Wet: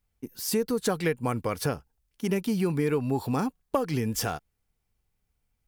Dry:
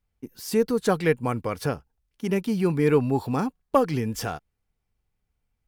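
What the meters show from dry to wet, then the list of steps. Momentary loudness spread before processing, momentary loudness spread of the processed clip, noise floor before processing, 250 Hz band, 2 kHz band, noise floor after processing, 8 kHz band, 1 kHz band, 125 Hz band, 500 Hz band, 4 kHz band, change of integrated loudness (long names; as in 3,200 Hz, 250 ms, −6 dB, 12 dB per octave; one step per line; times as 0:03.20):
13 LU, 7 LU, −78 dBFS, −3.0 dB, −3.0 dB, −78 dBFS, +4.0 dB, −4.0 dB, −2.5 dB, −5.0 dB, +1.5 dB, −3.5 dB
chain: high-shelf EQ 5,400 Hz +6.5 dB
downward compressor 6 to 1, threshold −22 dBFS, peak gain reduction 8.5 dB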